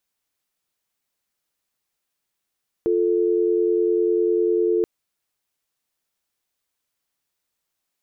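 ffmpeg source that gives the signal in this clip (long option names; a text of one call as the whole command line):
ffmpeg -f lavfi -i "aevalsrc='0.106*(sin(2*PI*350*t)+sin(2*PI*440*t))':duration=1.98:sample_rate=44100" out.wav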